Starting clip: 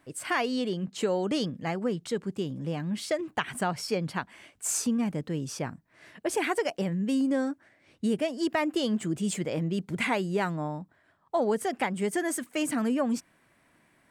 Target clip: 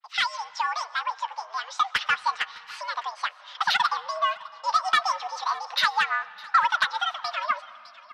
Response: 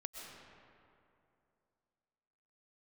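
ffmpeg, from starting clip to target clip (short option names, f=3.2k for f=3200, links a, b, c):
-filter_complex "[0:a]agate=range=-33dB:threshold=-54dB:ratio=3:detection=peak,acontrast=73,highpass=f=480:t=q:w=0.5412,highpass=f=480:t=q:w=1.307,lowpass=f=3.2k:t=q:w=0.5176,lowpass=f=3.2k:t=q:w=0.7071,lowpass=f=3.2k:t=q:w=1.932,afreqshift=100,dynaudnorm=f=610:g=9:m=5dB,asoftclip=type=tanh:threshold=-10.5dB,flanger=delay=6.4:depth=9.9:regen=-41:speed=0.18:shape=sinusoidal,asetrate=76440,aresample=44100,aecho=1:1:607:0.0841,asplit=2[a][b];[1:a]atrim=start_sample=2205[c];[b][c]afir=irnorm=-1:irlink=0,volume=-11.5dB[d];[a][d]amix=inputs=2:normalize=0,adynamicequalizer=threshold=0.00708:dfrequency=2600:dqfactor=0.7:tfrequency=2600:tqfactor=0.7:attack=5:release=100:ratio=0.375:range=4:mode=cutabove:tftype=highshelf,volume=2dB"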